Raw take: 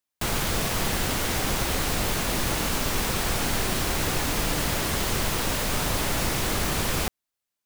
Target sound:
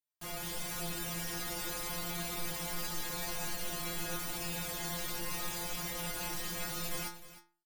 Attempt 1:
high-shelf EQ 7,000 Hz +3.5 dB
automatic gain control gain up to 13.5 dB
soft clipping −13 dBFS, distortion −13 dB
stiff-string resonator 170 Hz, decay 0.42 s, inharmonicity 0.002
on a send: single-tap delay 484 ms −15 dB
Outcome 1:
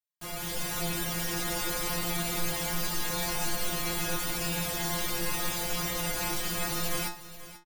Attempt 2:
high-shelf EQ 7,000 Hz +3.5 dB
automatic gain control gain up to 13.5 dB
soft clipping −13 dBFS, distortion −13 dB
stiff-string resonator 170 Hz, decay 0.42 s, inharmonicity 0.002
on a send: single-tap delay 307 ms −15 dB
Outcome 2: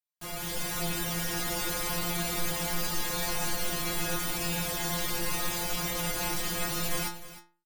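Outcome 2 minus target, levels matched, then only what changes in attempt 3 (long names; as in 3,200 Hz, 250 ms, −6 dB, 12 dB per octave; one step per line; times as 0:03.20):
soft clipping: distortion −7 dB
change: soft clipping −23.5 dBFS, distortion −6 dB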